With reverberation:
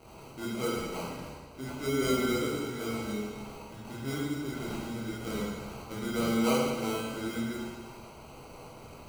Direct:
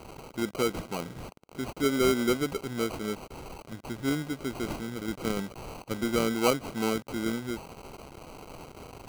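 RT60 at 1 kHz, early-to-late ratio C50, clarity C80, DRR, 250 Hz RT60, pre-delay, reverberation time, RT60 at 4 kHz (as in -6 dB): 1.5 s, -1.5 dB, 0.5 dB, -7.5 dB, 1.5 s, 14 ms, 1.5 s, 1.4 s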